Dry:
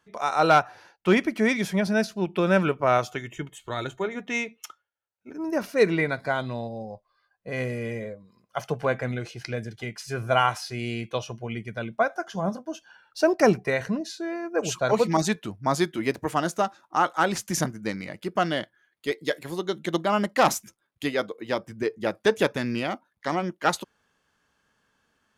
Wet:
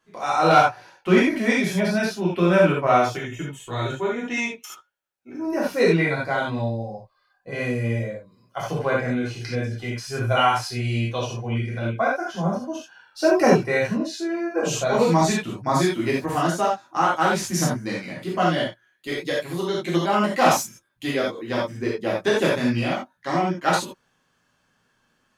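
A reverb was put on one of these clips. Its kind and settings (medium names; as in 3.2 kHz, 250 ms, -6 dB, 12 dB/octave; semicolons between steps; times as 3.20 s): gated-style reverb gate 110 ms flat, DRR -6.5 dB; trim -4 dB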